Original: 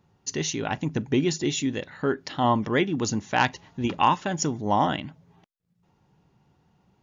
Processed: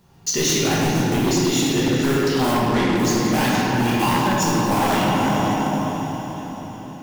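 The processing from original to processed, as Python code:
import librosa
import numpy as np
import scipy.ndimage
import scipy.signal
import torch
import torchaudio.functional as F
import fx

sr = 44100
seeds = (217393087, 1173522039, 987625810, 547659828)

y = fx.block_float(x, sr, bits=5)
y = fx.high_shelf(y, sr, hz=4000.0, db=8.5)
y = fx.echo_diffused(y, sr, ms=458, feedback_pct=52, wet_db=-15)
y = 10.0 ** (-21.5 / 20.0) * np.tanh(y / 10.0 ** (-21.5 / 20.0))
y = fx.lowpass(y, sr, hz=6000.0, slope=12, at=(2.53, 2.97))
y = fx.room_shoebox(y, sr, seeds[0], volume_m3=190.0, walls='hard', distance_m=1.2)
y = fx.rider(y, sr, range_db=4, speed_s=0.5)
y = 10.0 ** (-14.0 / 20.0) * (np.abs((y / 10.0 ** (-14.0 / 20.0) + 3.0) % 4.0 - 2.0) - 1.0)
y = F.gain(torch.from_numpy(y), 1.5).numpy()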